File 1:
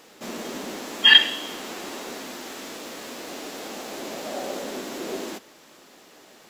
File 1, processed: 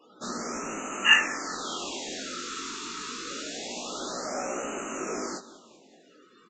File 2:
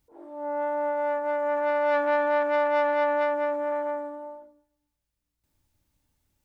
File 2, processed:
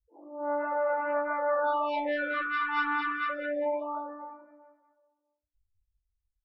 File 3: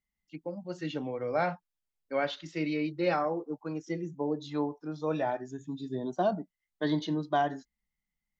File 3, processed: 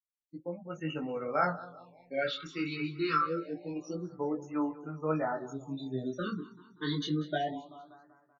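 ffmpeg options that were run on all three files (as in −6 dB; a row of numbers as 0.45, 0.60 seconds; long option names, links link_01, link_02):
-filter_complex "[0:a]flanger=delay=2.1:depth=3.4:regen=-87:speed=1.5:shape=triangular,lowshelf=frequency=97:gain=7,afftdn=noise_reduction=36:noise_floor=-55,asplit=2[link_01][link_02];[link_02]asoftclip=type=tanh:threshold=-15dB,volume=-11dB[link_03];[link_01][link_03]amix=inputs=2:normalize=0,acontrast=22,equalizer=frequency=1300:width_type=o:width=0.29:gain=15,asplit=2[link_04][link_05];[link_05]aecho=0:1:192|384|576|768|960:0.126|0.068|0.0367|0.0198|0.0107[link_06];[link_04][link_06]amix=inputs=2:normalize=0,aexciter=amount=3.2:drive=1.7:freq=2700,bandreject=frequency=3100:width=13,flanger=delay=16:depth=7.2:speed=0.24,aresample=16000,aresample=44100,afftfilt=real='re*(1-between(b*sr/1024,620*pow(4300/620,0.5+0.5*sin(2*PI*0.26*pts/sr))/1.41,620*pow(4300/620,0.5+0.5*sin(2*PI*0.26*pts/sr))*1.41))':imag='im*(1-between(b*sr/1024,620*pow(4300/620,0.5+0.5*sin(2*PI*0.26*pts/sr))/1.41,620*pow(4300/620,0.5+0.5*sin(2*PI*0.26*pts/sr))*1.41))':win_size=1024:overlap=0.75,volume=-2.5dB"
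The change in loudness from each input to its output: −7.5, −4.0, −2.0 LU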